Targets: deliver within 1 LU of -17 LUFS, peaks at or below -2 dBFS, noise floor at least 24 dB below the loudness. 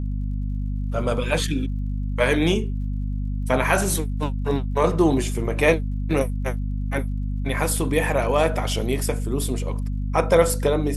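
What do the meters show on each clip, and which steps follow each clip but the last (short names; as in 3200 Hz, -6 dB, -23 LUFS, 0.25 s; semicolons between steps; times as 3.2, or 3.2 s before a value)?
ticks 53/s; hum 50 Hz; harmonics up to 250 Hz; hum level -23 dBFS; loudness -23.5 LUFS; peak -3.5 dBFS; loudness target -17.0 LUFS
-> de-click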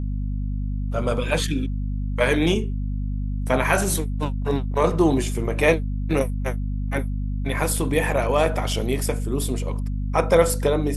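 ticks 0/s; hum 50 Hz; harmonics up to 250 Hz; hum level -23 dBFS
-> notches 50/100/150/200/250 Hz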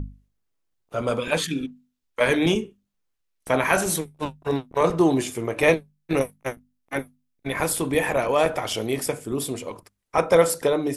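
hum none; loudness -24.0 LUFS; peak -4.0 dBFS; loudness target -17.0 LUFS
-> gain +7 dB; limiter -2 dBFS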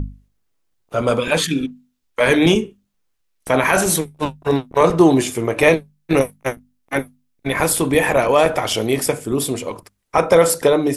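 loudness -17.5 LUFS; peak -2.0 dBFS; noise floor -68 dBFS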